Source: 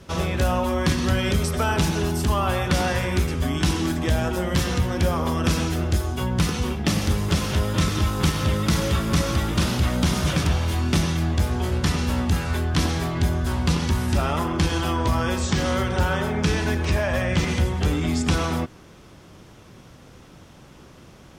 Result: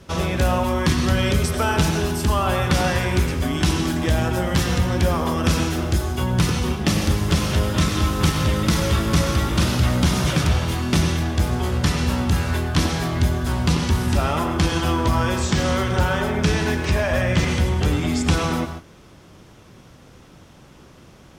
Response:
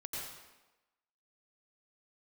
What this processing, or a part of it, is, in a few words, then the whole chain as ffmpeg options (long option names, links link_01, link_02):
keyed gated reverb: -filter_complex "[0:a]asplit=3[link_01][link_02][link_03];[1:a]atrim=start_sample=2205[link_04];[link_02][link_04]afir=irnorm=-1:irlink=0[link_05];[link_03]apad=whole_len=942906[link_06];[link_05][link_06]sidechaingate=range=-33dB:threshold=-40dB:ratio=16:detection=peak,volume=-6dB[link_07];[link_01][link_07]amix=inputs=2:normalize=0"